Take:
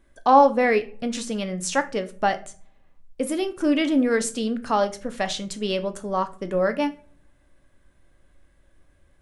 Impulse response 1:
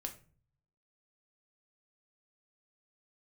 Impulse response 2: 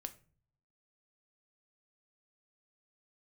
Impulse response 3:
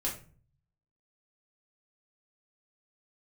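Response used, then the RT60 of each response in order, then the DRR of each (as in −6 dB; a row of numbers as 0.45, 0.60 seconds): 2; 0.40 s, non-exponential decay, 0.40 s; 3.5, 8.0, −5.0 decibels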